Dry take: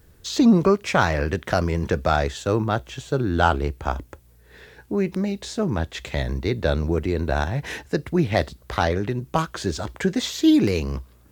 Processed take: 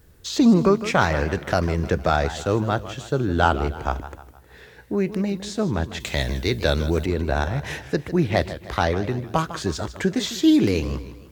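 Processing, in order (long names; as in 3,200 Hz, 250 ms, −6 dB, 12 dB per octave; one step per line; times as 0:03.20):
0:06.00–0:07.06: high-shelf EQ 2,700 Hz +11 dB
feedback echo with a swinging delay time 155 ms, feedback 44%, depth 163 cents, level −13.5 dB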